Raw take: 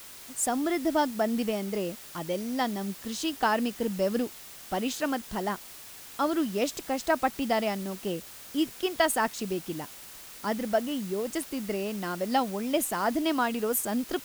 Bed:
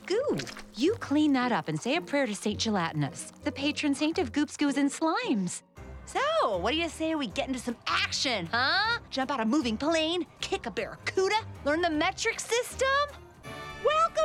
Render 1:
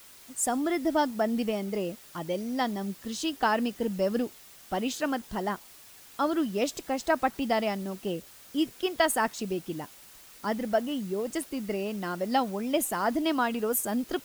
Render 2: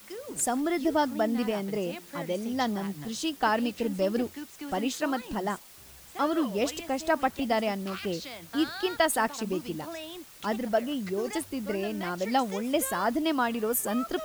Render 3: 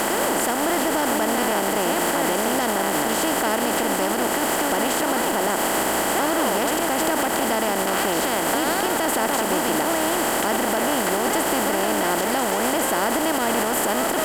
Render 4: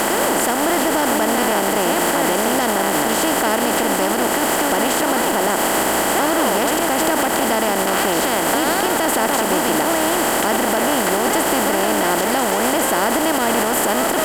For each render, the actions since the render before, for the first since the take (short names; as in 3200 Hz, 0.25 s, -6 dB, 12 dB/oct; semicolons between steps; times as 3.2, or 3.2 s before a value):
denoiser 6 dB, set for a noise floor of -46 dBFS
add bed -13 dB
per-bin compression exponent 0.2; limiter -12 dBFS, peak gain reduction 9.5 dB
gain +4 dB